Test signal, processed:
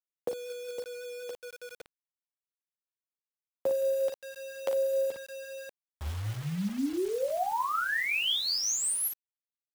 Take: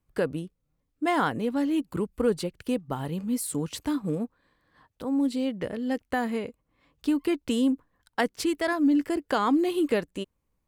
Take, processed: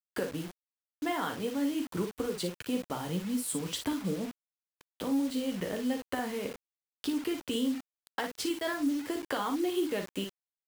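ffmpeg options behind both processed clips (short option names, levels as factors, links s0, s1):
-filter_complex "[0:a]tremolo=f=5.4:d=0.48,acrossover=split=140|860[s0][s1][s2];[s0]acrusher=bits=4:mode=log:mix=0:aa=0.000001[s3];[s3][s1][s2]amix=inputs=3:normalize=0,alimiter=limit=0.106:level=0:latency=1:release=365,equalizer=f=3200:t=o:w=0.22:g=6,acompressor=threshold=0.0178:ratio=3,lowshelf=f=77:g=-11.5,aecho=1:1:11|40|56:0.422|0.282|0.422,acrusher=bits=7:mix=0:aa=0.000001,volume=1.5"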